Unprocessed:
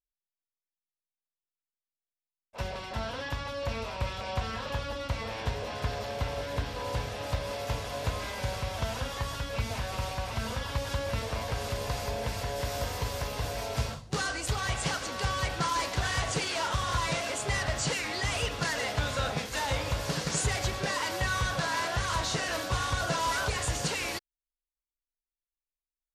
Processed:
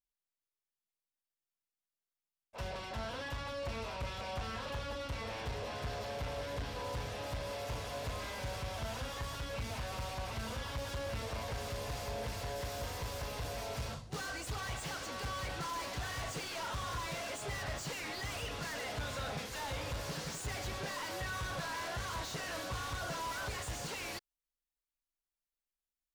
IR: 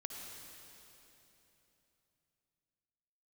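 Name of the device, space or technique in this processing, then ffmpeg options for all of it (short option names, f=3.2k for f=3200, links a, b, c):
saturation between pre-emphasis and de-emphasis: -af "highshelf=f=2.3k:g=11.5,asoftclip=type=tanh:threshold=-31dB,highshelf=f=2.3k:g=-11.5,volume=-2dB"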